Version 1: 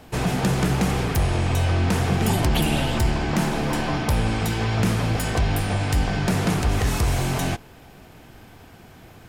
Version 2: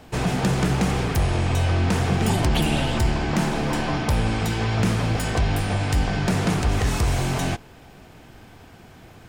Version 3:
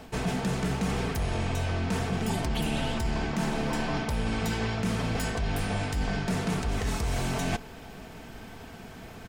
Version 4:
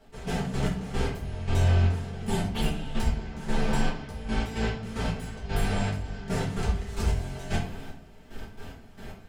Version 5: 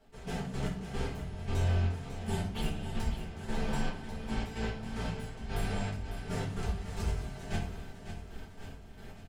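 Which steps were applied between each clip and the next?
parametric band 12,000 Hz −11.5 dB 0.24 octaves
comb filter 4.5 ms, depth 36%; reversed playback; downward compressor 6 to 1, threshold −28 dBFS, peak gain reduction 12 dB; reversed playback; level +2 dB
gate pattern "..x.x..x...xxx." 112 BPM −12 dB; rectangular room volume 34 cubic metres, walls mixed, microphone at 1.2 metres; level −6 dB
repeating echo 549 ms, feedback 56%, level −10 dB; level −7 dB

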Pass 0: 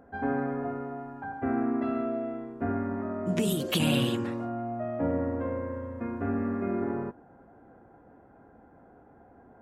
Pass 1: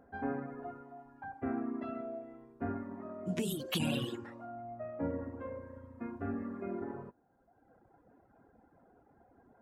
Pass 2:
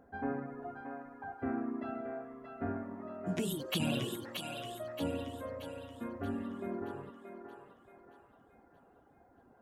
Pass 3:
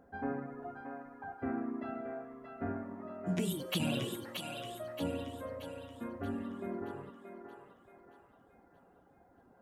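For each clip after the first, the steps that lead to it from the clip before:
reverb reduction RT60 1.4 s; level −6 dB
feedback echo with a high-pass in the loop 627 ms, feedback 48%, high-pass 520 Hz, level −5 dB
tuned comb filter 180 Hz, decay 0.83 s, harmonics odd, mix 70%; level +9.5 dB

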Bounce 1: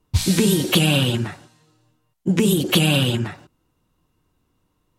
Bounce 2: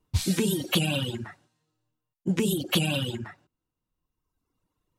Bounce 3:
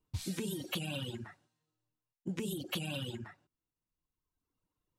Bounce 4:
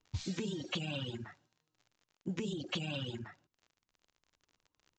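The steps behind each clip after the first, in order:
reverb reduction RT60 1.4 s; level −6.5 dB
downward compressor, threshold −25 dBFS, peak gain reduction 6.5 dB; level −8.5 dB
surface crackle 55 per second −50 dBFS; downsampling to 16,000 Hz

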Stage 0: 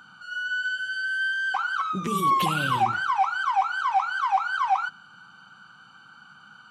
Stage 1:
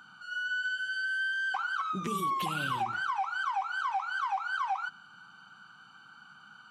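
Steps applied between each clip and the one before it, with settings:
low-shelf EQ 140 Hz −4.5 dB
downward compressor, threshold −25 dBFS, peak gain reduction 7.5 dB
notch filter 530 Hz, Q 12
level −3.5 dB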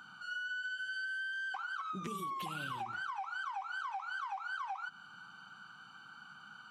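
downward compressor, threshold −38 dBFS, peak gain reduction 10 dB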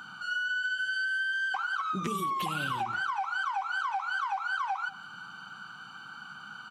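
far-end echo of a speakerphone 190 ms, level −18 dB
level +8.5 dB

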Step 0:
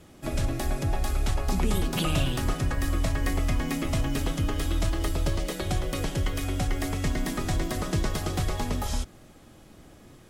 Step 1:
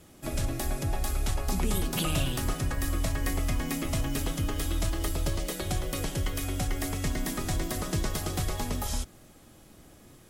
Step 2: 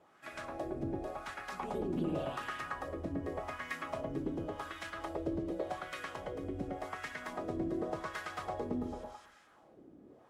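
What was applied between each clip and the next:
high-shelf EQ 7,200 Hz +9.5 dB; level −3 dB
delay that swaps between a low-pass and a high-pass 109 ms, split 1,900 Hz, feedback 52%, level −2 dB; LFO wah 0.88 Hz 300–1,700 Hz, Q 2; level +1 dB

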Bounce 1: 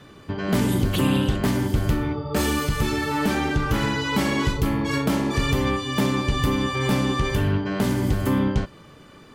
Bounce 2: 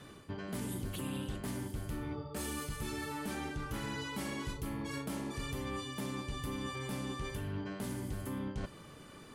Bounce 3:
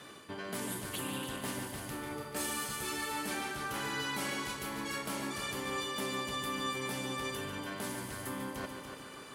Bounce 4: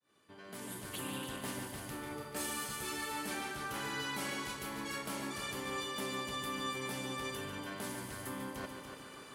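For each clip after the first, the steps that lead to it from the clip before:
parametric band 10,000 Hz +10 dB 0.8 octaves; reversed playback; downward compressor 5 to 1, threshold −32 dBFS, peak gain reduction 14.5 dB; reversed playback; level −5.5 dB
high-pass filter 530 Hz 6 dB per octave; echo machine with several playback heads 145 ms, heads first and second, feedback 52%, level −10 dB; level +5.5 dB
fade in at the beginning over 1.06 s; level −2.5 dB

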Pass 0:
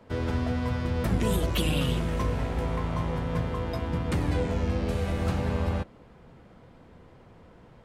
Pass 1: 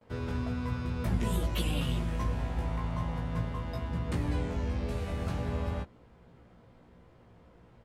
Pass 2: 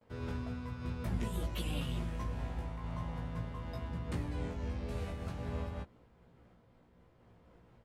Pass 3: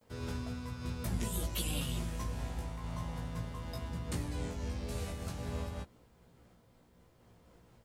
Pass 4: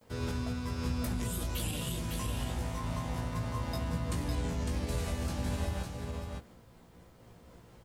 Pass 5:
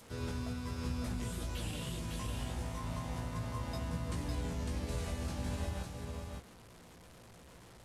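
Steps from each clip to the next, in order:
noise gate with hold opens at −49 dBFS; parametric band 79 Hz +4 dB 0.77 octaves; double-tracking delay 17 ms −3.5 dB; level −7.5 dB
amplitude modulation by smooth noise, depth 55%; level −3 dB
bass and treble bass 0 dB, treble +13 dB
brickwall limiter −30.5 dBFS, peak gain reduction 8 dB; speech leveller; single-tap delay 555 ms −4.5 dB; level +5 dB
linear delta modulator 64 kbit/s, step −46 dBFS; level −4 dB

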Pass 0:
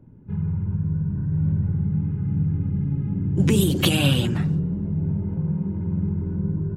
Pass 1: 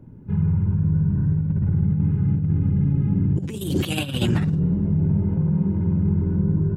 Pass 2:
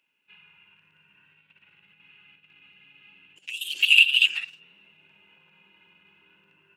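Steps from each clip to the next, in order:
compressor whose output falls as the input rises −23 dBFS, ratio −0.5; level +3.5 dB
high-pass with resonance 2,700 Hz, resonance Q 13; level −2.5 dB

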